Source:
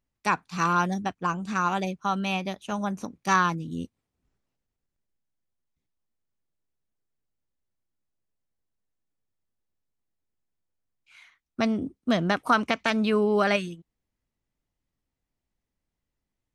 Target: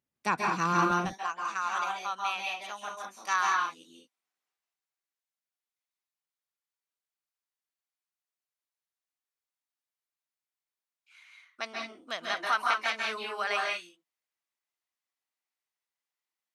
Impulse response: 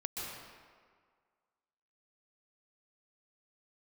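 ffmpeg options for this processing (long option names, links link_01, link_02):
-filter_complex "[0:a]asetnsamples=nb_out_samples=441:pad=0,asendcmd='0.91 highpass f 1000',highpass=120[link_01];[1:a]atrim=start_sample=2205,afade=type=out:start_time=0.25:duration=0.01,atrim=end_sample=11466,asetrate=40572,aresample=44100[link_02];[link_01][link_02]afir=irnorm=-1:irlink=0,volume=-1.5dB"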